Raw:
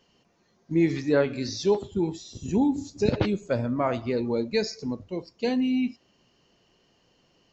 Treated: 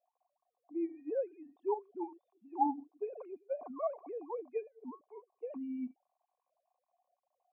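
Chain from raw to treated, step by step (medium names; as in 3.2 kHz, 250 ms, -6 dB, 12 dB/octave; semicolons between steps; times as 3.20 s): formants replaced by sine waves; cascade formant filter a; treble shelf 2.8 kHz -8.5 dB; band-stop 1.3 kHz, Q 7.9; trim +9 dB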